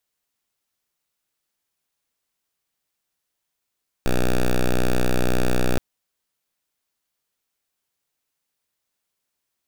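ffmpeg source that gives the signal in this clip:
-f lavfi -i "aevalsrc='0.133*(2*lt(mod(61.9*t,1),0.06)-1)':d=1.72:s=44100"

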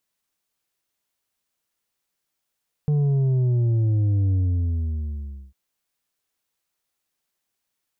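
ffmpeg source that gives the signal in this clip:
-f lavfi -i "aevalsrc='0.126*clip((2.65-t)/1.21,0,1)*tanh(1.88*sin(2*PI*150*2.65/log(65/150)*(exp(log(65/150)*t/2.65)-1)))/tanh(1.88)':d=2.65:s=44100"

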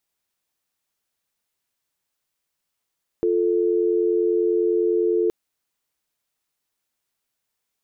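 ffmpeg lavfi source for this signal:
-f lavfi -i "aevalsrc='0.1*(sin(2*PI*350*t)+sin(2*PI*440*t))':d=2.07:s=44100"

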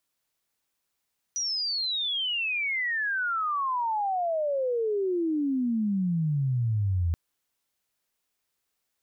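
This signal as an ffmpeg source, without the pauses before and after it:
-f lavfi -i "aevalsrc='pow(10,(-26.5+4*t/5.78)/20)*sin(2*PI*5900*5.78/log(81/5900)*(exp(log(81/5900)*t/5.78)-1))':d=5.78:s=44100"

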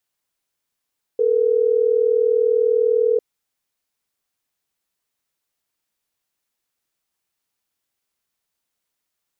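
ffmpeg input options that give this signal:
-f lavfi -i "aevalsrc='0.141*(sin(2*PI*440*t)+sin(2*PI*480*t))*clip(min(mod(t,6),2-mod(t,6))/0.005,0,1)':d=3.12:s=44100"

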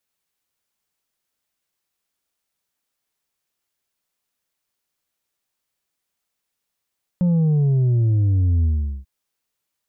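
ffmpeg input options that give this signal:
-f lavfi -i "aevalsrc='0.178*clip((1.84-t)/0.41,0,1)*tanh(1.58*sin(2*PI*180*1.84/log(65/180)*(exp(log(65/180)*t/1.84)-1)))/tanh(1.58)':d=1.84:s=44100"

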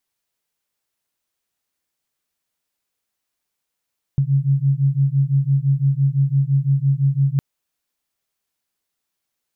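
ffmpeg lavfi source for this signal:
-f lavfi -i "aevalsrc='0.133*(sin(2*PI*135*t)+sin(2*PI*140.9*t))':d=3.21:s=44100"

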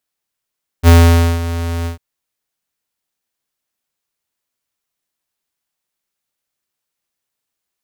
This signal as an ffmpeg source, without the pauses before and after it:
-f lavfi -i "aevalsrc='0.596*(2*lt(mod(84.4*t,1),0.5)-1)':d=1.149:s=44100,afade=t=in:d=0.049,afade=t=out:st=0.049:d=0.511:silence=0.178,afade=t=out:st=1.03:d=0.119"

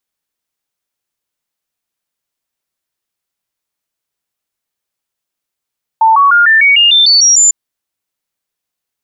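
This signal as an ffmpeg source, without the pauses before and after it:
-f lavfi -i "aevalsrc='0.631*clip(min(mod(t,0.15),0.15-mod(t,0.15))/0.005,0,1)*sin(2*PI*891*pow(2,floor(t/0.15)/3)*mod(t,0.15))':d=1.5:s=44100"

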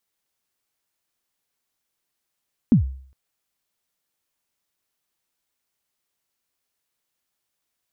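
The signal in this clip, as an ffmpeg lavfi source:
-f lavfi -i "aevalsrc='0.398*pow(10,-3*t/0.53)*sin(2*PI*(270*0.111/log(66/270)*(exp(log(66/270)*min(t,0.111)/0.111)-1)+66*max(t-0.111,0)))':d=0.41:s=44100"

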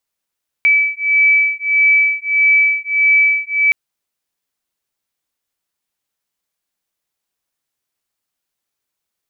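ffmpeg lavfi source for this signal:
-f lavfi -i "aevalsrc='0.211*(sin(2*PI*2300*t)+sin(2*PI*2301.6*t))':d=3.07:s=44100"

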